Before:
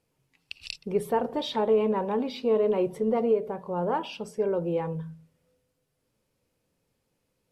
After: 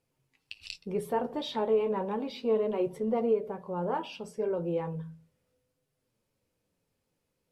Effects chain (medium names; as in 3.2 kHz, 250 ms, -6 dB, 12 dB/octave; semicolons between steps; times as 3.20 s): flange 0.34 Hz, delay 7.4 ms, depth 5.6 ms, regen -49%